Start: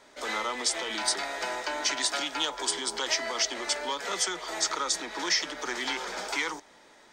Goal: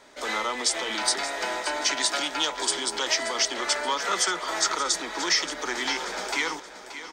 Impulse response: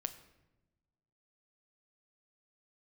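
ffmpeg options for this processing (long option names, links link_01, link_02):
-filter_complex "[0:a]asettb=1/sr,asplit=3[link_01][link_02][link_03];[link_01]atrim=end=3.594[link_04];[link_02]atrim=start=3.59:end=4.72,asetpts=PTS-STARTPTS,afade=type=in:duration=0.004:curve=qsin,afade=type=out:start_time=1.126:duration=0.004:curve=qsin,equalizer=frequency=1300:width=1.8:gain=6[link_05];[link_03]atrim=start=4.716[link_06];[link_04][link_05]acrossfade=duration=0.004:curve1=hsin:curve2=qsin[link_07];[link_07][link_06]acrossfade=duration=0.004:curve1=qsin:curve2=hsin,aecho=1:1:578|1156|1734|2312:0.237|0.0996|0.0418|0.0176,volume=3dB"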